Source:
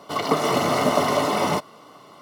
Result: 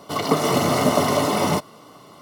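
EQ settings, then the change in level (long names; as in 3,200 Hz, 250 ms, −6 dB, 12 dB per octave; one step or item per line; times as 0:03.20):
low-shelf EQ 72 Hz +7 dB
low-shelf EQ 430 Hz +6 dB
high-shelf EQ 4,900 Hz +8 dB
−1.5 dB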